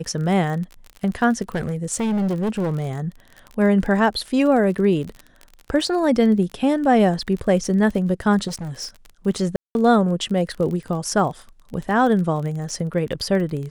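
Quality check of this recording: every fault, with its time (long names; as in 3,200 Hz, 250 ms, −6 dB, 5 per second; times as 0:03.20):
surface crackle 34 per second −28 dBFS
0:01.55–0:02.91: clipping −18.5 dBFS
0:08.47–0:08.96: clipping −26 dBFS
0:09.56–0:09.75: drop-out 191 ms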